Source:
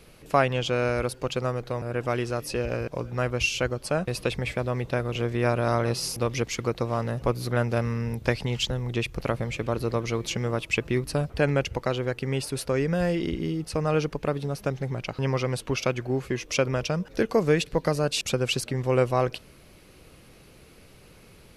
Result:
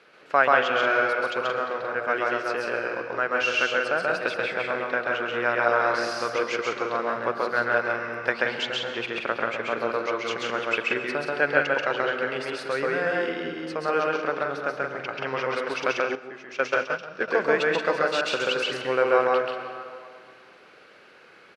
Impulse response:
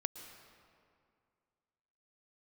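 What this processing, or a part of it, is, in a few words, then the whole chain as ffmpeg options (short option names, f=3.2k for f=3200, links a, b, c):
station announcement: -filter_complex "[0:a]highpass=410,lowpass=3.9k,equalizer=f=1.5k:t=o:w=0.52:g=10.5,aecho=1:1:134.1|177.8:0.891|0.501[a];[1:a]atrim=start_sample=2205[b];[a][b]afir=irnorm=-1:irlink=0,asettb=1/sr,asplit=3[c][d][e];[c]atrim=end=16.154[f];[d]atrim=start=16.15:end=17.28,asetpts=PTS-STARTPTS,afade=t=in:d=0.004:c=qsin,afade=t=out:st=1.126:d=0.004:c=qsin,agate=range=-11dB:threshold=-24dB:ratio=16:detection=peak[g];[e]atrim=start=17.276[h];[f][g]acrossfade=d=0.004:c1=hsin:c2=qsin[i];[i][h]acrossfade=d=0.004:c1=qsin:c2=hsin"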